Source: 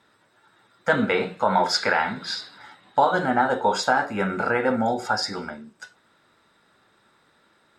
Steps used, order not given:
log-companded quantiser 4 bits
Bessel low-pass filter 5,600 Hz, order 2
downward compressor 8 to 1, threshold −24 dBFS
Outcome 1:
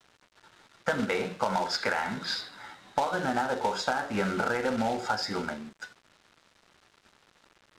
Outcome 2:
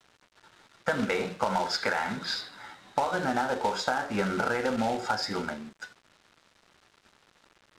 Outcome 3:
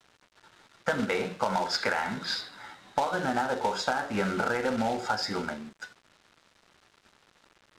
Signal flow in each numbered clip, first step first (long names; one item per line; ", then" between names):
log-companded quantiser, then downward compressor, then Bessel low-pass filter
downward compressor, then log-companded quantiser, then Bessel low-pass filter
log-companded quantiser, then Bessel low-pass filter, then downward compressor